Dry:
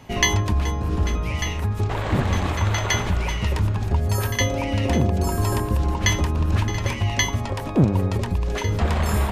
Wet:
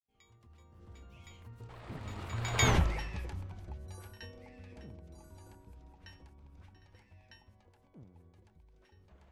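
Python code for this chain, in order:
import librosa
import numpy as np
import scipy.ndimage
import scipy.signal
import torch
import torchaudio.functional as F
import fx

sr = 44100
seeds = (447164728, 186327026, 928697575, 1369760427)

y = fx.fade_in_head(x, sr, length_s=1.14)
y = fx.doppler_pass(y, sr, speed_mps=37, closest_m=2.2, pass_at_s=2.71)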